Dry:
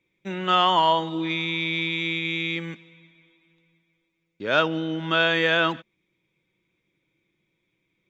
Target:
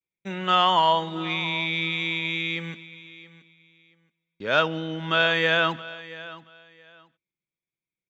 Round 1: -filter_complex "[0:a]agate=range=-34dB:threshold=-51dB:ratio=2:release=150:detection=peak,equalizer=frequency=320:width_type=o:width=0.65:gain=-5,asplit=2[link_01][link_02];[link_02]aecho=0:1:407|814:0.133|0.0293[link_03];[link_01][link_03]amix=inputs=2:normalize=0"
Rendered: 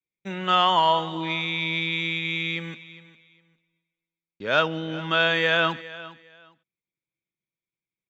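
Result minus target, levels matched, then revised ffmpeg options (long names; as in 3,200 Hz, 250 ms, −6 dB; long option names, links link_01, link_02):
echo 269 ms early
-filter_complex "[0:a]agate=range=-34dB:threshold=-51dB:ratio=2:release=150:detection=peak,equalizer=frequency=320:width_type=o:width=0.65:gain=-5,asplit=2[link_01][link_02];[link_02]aecho=0:1:676|1352:0.133|0.0293[link_03];[link_01][link_03]amix=inputs=2:normalize=0"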